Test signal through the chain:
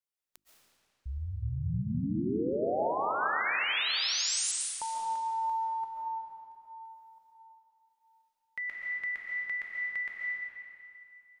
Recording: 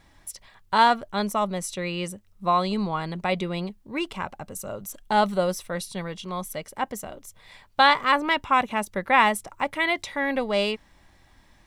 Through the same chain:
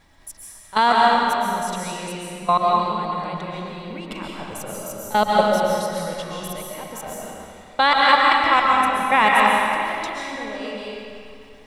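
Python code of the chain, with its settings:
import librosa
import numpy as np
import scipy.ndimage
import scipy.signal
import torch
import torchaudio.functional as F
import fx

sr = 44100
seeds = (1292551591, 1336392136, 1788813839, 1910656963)

y = fx.level_steps(x, sr, step_db=20)
y = fx.hum_notches(y, sr, base_hz=50, count=7)
y = fx.rev_freeverb(y, sr, rt60_s=2.5, hf_ratio=0.85, predelay_ms=95, drr_db=-4.0)
y = y * librosa.db_to_amplitude(4.5)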